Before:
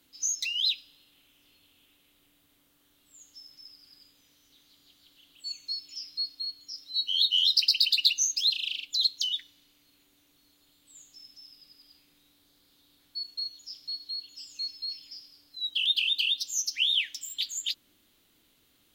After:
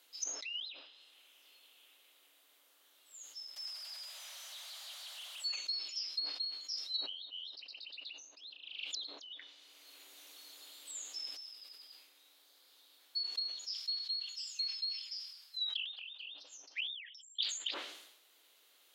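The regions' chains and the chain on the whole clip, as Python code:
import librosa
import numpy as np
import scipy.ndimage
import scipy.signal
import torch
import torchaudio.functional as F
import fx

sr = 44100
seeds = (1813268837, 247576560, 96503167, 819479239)

y = fx.chain(x, sr, fx.zero_step(step_db=-44.5),
    fx.steep_highpass(hz=550.0, slope=96), at=(3.56, 5.56))
y = fx.chain(y, sr, fx.peak_eq(hz=200.0, db=3.5, octaves=2.3),
    fx.band_squash(depth_pct=40), at=(8.41, 11.37))
y = fx.chain(y, sr, fx.highpass(hz=1200.0, slope=12),
    fx.overload_stage(gain_db=19.0), at=(13.71, 16.2))
y = fx.chain(y, sr, fx.envelope_sharpen(power=3.0),
    fx.air_absorb(metres=190.0), at=(16.87, 17.43))
y = fx.env_lowpass_down(y, sr, base_hz=850.0, full_db=-26.5)
y = scipy.signal.sosfilt(scipy.signal.butter(4, 460.0, 'highpass', fs=sr, output='sos'), y)
y = fx.sustainer(y, sr, db_per_s=61.0)
y = y * librosa.db_to_amplitude(1.0)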